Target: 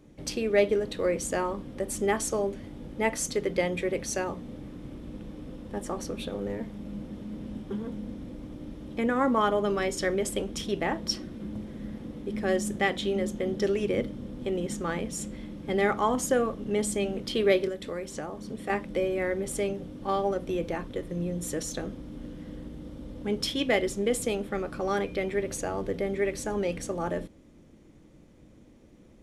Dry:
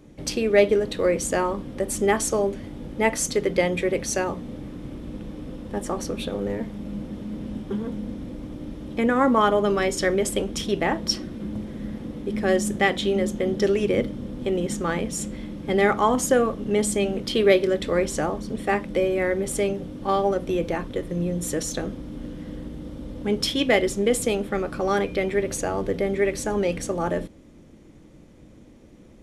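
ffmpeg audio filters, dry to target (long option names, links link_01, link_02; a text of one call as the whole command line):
ffmpeg -i in.wav -filter_complex "[0:a]asettb=1/sr,asplit=3[link_01][link_02][link_03];[link_01]atrim=end=17.684[link_04];[link_02]atrim=start=17.68:end=18.7,asetpts=PTS-STARTPTS,afade=type=in:duration=0.004:curve=qsin,afade=type=out:start_time=1.016:duration=0.004:curve=qsin,acrossover=split=81|7000[link_05][link_06][link_07];[link_05]acompressor=threshold=-51dB:ratio=4[link_08];[link_06]acompressor=threshold=-27dB:ratio=4[link_09];[link_07]acompressor=threshold=-45dB:ratio=4[link_10];[link_08][link_09][link_10]amix=inputs=3:normalize=0[link_11];[link_03]atrim=start=18.696[link_12];[link_04][link_11]acrossfade=duration=0.004:curve1=hsin:curve2=qsin[link_13];[link_13][link_12]acrossfade=duration=0.004:curve1=qsin:curve2=hsin,volume=-5.5dB" out.wav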